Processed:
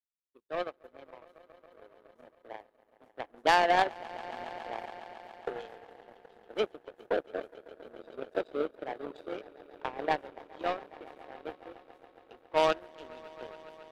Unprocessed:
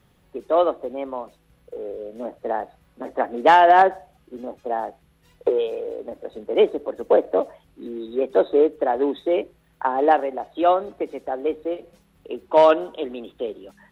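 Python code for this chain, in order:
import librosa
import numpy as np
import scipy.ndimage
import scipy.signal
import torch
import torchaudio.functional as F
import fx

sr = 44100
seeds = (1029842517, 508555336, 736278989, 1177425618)

y = fx.high_shelf(x, sr, hz=2300.0, db=8.0)
y = fx.echo_swell(y, sr, ms=138, loudest=5, wet_db=-14.0)
y = fx.power_curve(y, sr, exponent=2.0)
y = F.gain(torch.from_numpy(y), -7.0).numpy()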